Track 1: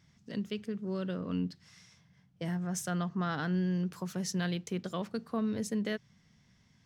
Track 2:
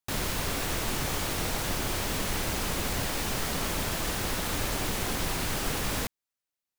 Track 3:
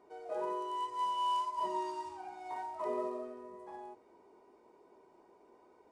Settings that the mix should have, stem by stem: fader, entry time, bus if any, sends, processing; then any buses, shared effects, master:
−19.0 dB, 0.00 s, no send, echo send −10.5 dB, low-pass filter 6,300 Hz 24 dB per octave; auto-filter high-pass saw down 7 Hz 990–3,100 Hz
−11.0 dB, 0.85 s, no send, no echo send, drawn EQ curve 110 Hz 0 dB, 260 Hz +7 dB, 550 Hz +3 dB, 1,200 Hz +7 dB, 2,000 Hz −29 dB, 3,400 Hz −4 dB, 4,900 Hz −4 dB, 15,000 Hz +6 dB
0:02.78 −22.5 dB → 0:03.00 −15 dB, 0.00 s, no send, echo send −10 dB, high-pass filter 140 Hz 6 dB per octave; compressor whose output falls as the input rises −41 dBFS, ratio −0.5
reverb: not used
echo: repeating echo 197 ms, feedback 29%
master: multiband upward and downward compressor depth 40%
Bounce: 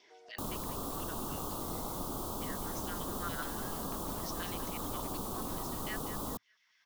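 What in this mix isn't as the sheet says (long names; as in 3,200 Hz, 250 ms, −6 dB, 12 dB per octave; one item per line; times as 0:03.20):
stem 1 −19.0 dB → −7.5 dB
stem 2: entry 0.85 s → 0.30 s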